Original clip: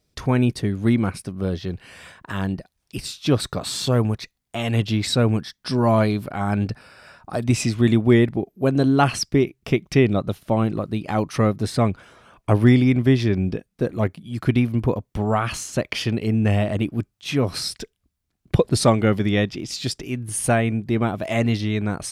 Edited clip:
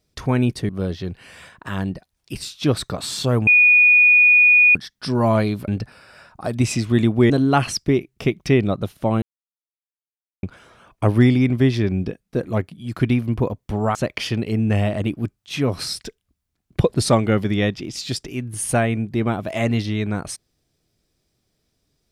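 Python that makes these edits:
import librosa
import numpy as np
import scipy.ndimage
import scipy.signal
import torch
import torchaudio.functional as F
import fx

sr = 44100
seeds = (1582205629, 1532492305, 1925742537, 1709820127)

y = fx.edit(x, sr, fx.cut(start_s=0.69, length_s=0.63),
    fx.bleep(start_s=4.1, length_s=1.28, hz=2460.0, db=-9.0),
    fx.cut(start_s=6.31, length_s=0.26),
    fx.cut(start_s=8.19, length_s=0.57),
    fx.silence(start_s=10.68, length_s=1.21),
    fx.cut(start_s=15.41, length_s=0.29), tone=tone)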